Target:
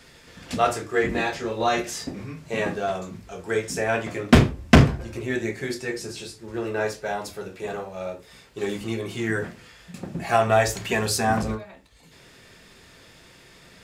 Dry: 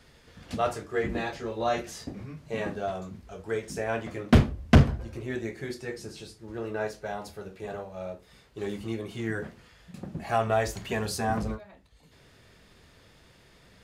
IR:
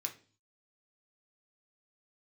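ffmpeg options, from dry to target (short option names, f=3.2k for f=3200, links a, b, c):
-filter_complex "[0:a]asplit=2[a][b];[1:a]atrim=start_sample=2205,atrim=end_sample=3969[c];[b][c]afir=irnorm=-1:irlink=0,volume=0.5dB[d];[a][d]amix=inputs=2:normalize=0,volume=3dB"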